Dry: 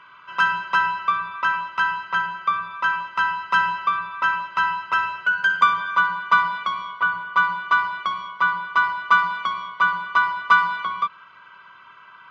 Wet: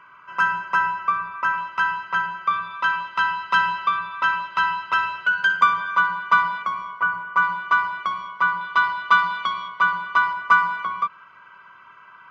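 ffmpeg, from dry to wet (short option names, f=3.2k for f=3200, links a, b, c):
-af "asetnsamples=n=441:p=0,asendcmd='1.58 equalizer g -5;2.51 equalizer g 3.5;5.53 equalizer g -4;6.62 equalizer g -14.5;7.42 equalizer g -6;8.61 equalizer g 3.5;9.68 equalizer g -2.5;10.33 equalizer g -10',equalizer=f=3.7k:t=o:w=0.61:g=-14.5"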